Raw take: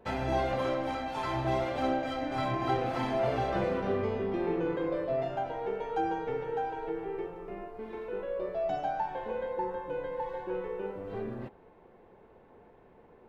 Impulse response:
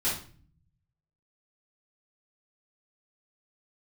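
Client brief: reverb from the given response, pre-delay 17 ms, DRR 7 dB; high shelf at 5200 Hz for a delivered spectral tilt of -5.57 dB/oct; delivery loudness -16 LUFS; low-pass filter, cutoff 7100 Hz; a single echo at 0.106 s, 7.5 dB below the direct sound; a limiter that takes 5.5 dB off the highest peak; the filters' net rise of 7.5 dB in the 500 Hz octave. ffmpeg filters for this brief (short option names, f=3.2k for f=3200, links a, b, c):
-filter_complex "[0:a]lowpass=7.1k,equalizer=f=500:t=o:g=9,highshelf=f=5.2k:g=3.5,alimiter=limit=-18dB:level=0:latency=1,aecho=1:1:106:0.422,asplit=2[a][b];[1:a]atrim=start_sample=2205,adelay=17[c];[b][c]afir=irnorm=-1:irlink=0,volume=-15.5dB[d];[a][d]amix=inputs=2:normalize=0,volume=12dB"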